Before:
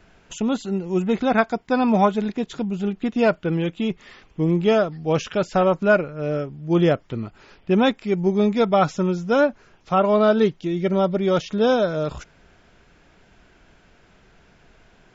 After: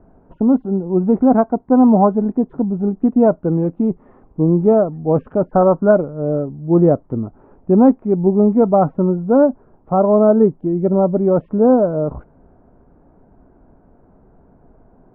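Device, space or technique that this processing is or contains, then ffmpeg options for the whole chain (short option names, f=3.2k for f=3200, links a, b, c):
under water: -filter_complex "[0:a]lowpass=f=950:w=0.5412,lowpass=f=950:w=1.3066,equalizer=f=260:t=o:w=0.27:g=7,asettb=1/sr,asplit=3[a][b][c];[a]atrim=end=5.514[d];[b]atrim=start=5.51:end=5.91,asetpts=PTS-STARTPTS,afade=t=in:d=0.004:c=qsin,afade=t=out:st=0.396:d=0.004:c=qsin,highshelf=f=2.1k:t=q:w=3:g=-11.5[e];[c]atrim=start=5.906[f];[d][e]acrossfade=d=0.004:c1=hsin:c2=qsin[g];[g][f]acrossfade=d=0.004:c1=qsin:c2=hsin,volume=5dB"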